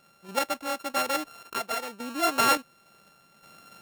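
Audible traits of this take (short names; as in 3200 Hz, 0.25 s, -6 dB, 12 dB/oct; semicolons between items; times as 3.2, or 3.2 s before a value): a buzz of ramps at a fixed pitch in blocks of 32 samples; random-step tremolo, depth 70%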